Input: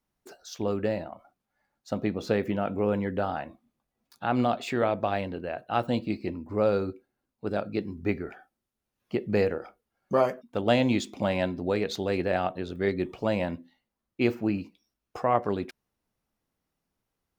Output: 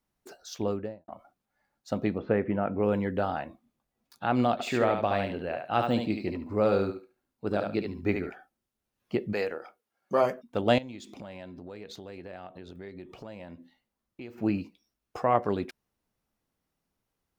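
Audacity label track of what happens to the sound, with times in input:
0.580000	1.080000	studio fade out
2.180000	2.830000	low-pass 2.2 kHz 24 dB/octave
4.520000	8.300000	thinning echo 72 ms, feedback 21%, level -4 dB
9.320000	10.220000	high-pass 910 Hz -> 290 Hz 6 dB/octave
10.780000	14.380000	compression 4:1, threshold -42 dBFS

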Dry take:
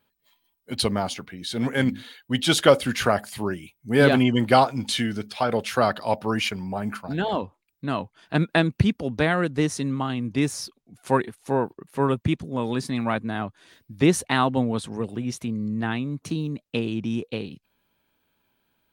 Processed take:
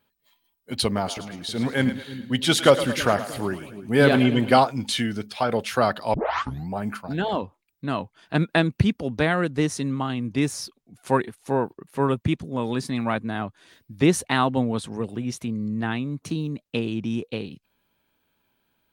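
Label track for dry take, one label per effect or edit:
0.850000	4.580000	two-band feedback delay split 390 Hz, lows 317 ms, highs 109 ms, level -12.5 dB
6.140000	6.140000	tape start 0.56 s

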